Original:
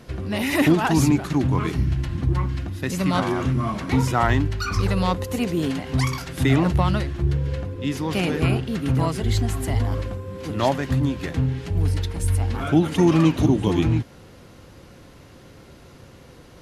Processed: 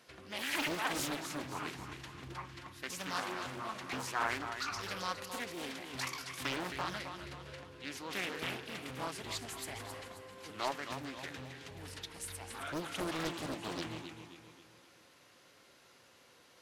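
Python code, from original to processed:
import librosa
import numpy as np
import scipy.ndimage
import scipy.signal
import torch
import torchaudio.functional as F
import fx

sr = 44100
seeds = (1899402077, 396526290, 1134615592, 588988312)

p1 = fx.highpass(x, sr, hz=1400.0, slope=6)
p2 = p1 + fx.echo_feedback(p1, sr, ms=266, feedback_pct=45, wet_db=-8.5, dry=0)
p3 = fx.doppler_dist(p2, sr, depth_ms=0.81)
y = F.gain(torch.from_numpy(p3), -8.0).numpy()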